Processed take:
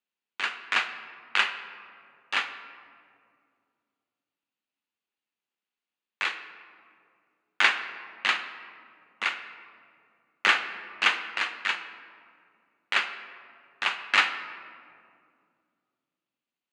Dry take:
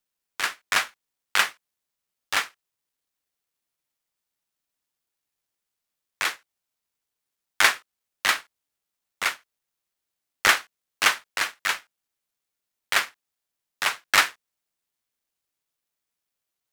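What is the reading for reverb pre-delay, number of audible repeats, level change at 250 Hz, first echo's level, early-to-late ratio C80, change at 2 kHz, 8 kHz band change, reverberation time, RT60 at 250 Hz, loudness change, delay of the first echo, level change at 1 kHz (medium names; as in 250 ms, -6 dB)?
3 ms, no echo, -2.5 dB, no echo, 11.0 dB, -2.0 dB, -15.0 dB, 2.3 s, 3.1 s, -3.0 dB, no echo, -3.0 dB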